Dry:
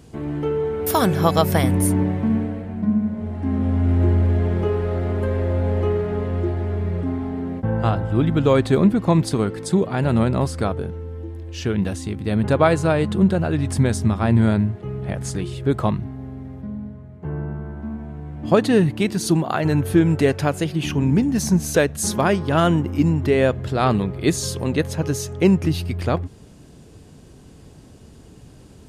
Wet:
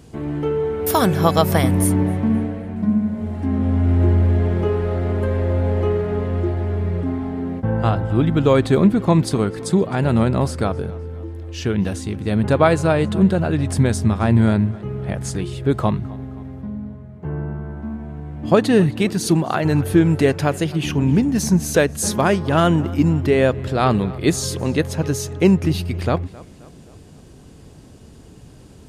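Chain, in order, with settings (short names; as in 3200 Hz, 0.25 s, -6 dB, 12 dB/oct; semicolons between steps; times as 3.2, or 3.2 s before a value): 2.76–3.46 high shelf 4900 Hz +8 dB; on a send: tape echo 0.263 s, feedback 52%, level -20 dB, low-pass 5500 Hz; on the sum: gain +1.5 dB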